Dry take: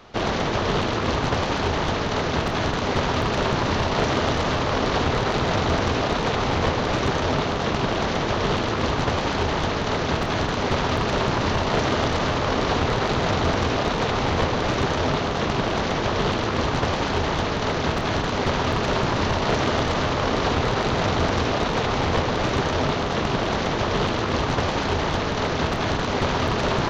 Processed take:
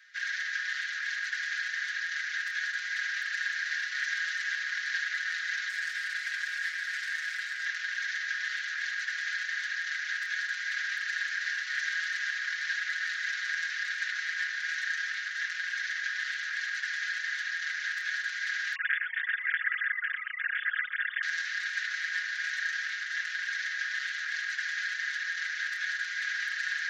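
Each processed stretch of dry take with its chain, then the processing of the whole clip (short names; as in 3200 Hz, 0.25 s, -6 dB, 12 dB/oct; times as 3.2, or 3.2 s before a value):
5.69–7.65 notches 50/100/150 Hz + hard clip -19.5 dBFS + Doppler distortion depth 0.36 ms
18.75–21.23 sine-wave speech + echo 0.118 s -14.5 dB
whole clip: Chebyshev high-pass 1600 Hz, order 6; resonant high shelf 2100 Hz -6 dB, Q 3; comb 5.5 ms, depth 87%; gain -2.5 dB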